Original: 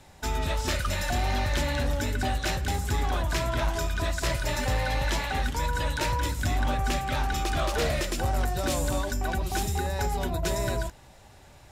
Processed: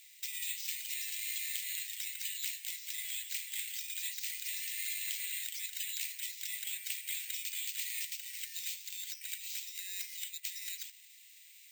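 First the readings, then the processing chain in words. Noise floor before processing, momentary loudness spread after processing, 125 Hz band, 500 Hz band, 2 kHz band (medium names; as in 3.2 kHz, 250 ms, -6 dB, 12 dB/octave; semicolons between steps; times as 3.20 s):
-52 dBFS, 5 LU, under -40 dB, under -40 dB, -12.0 dB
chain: steep high-pass 2 kHz 72 dB/octave; compression, threshold -40 dBFS, peak gain reduction 11 dB; careless resampling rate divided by 4×, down filtered, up zero stuff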